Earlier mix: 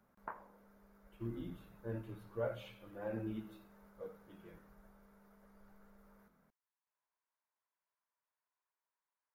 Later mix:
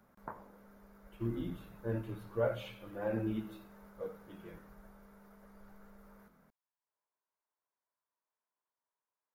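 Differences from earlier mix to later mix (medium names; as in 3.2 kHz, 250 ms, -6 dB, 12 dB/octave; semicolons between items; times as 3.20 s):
speech +6.0 dB; background: add tilt EQ -4 dB/octave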